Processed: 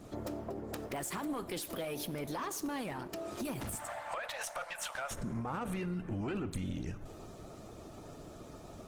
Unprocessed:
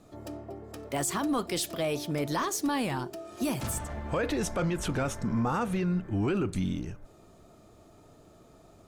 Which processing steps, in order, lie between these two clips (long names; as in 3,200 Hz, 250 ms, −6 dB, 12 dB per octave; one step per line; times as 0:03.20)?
0:00.95–0:02.09: parametric band 12,000 Hz +2 dB → +12 dB 0.33 octaves
0:03.75–0:05.11: Butterworth high-pass 570 Hz 72 dB per octave
harmonic and percussive parts rebalanced harmonic −7 dB
dynamic equaliser 5,600 Hz, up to −4 dB, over −52 dBFS, Q 0.95
brickwall limiter −29.5 dBFS, peak gain reduction 10.5 dB
downward compressor 4 to 1, threshold −45 dBFS, peak gain reduction 10.5 dB
tube saturation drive 38 dB, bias 0.35
convolution reverb RT60 1.6 s, pre-delay 28 ms, DRR 15.5 dB
level +10.5 dB
Opus 16 kbit/s 48,000 Hz